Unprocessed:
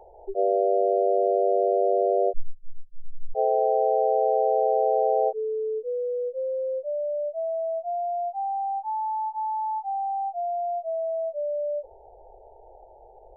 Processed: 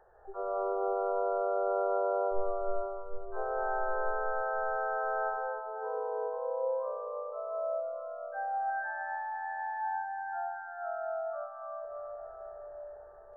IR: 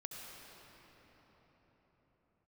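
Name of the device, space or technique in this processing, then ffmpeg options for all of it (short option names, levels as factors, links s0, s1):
shimmer-style reverb: -filter_complex "[0:a]asettb=1/sr,asplit=3[s0][s1][s2];[s0]atrim=end=7.834[s3];[s1]atrim=start=7.83:end=8.7,asetpts=PTS-STARTPTS,afade=t=in:d=0.004:c=qsin,afade=t=out:st=0.866:d=0.004:c=qsin,aecho=1:1:6.4:0.96,atrim=end_sample=38367[s4];[s2]atrim=start=8.696[s5];[s3][s4]acrossfade=d=0.004:c1=hsin:c2=qsin[s6];[s6][s5]acrossfade=d=0.004:c1=qsin:c2=hsin,asplit=2[s7][s8];[s8]asetrate=88200,aresample=44100,atempo=0.5,volume=0.398[s9];[s7][s9]amix=inputs=2:normalize=0[s10];[1:a]atrim=start_sample=2205[s11];[s10][s11]afir=irnorm=-1:irlink=0,volume=0.422"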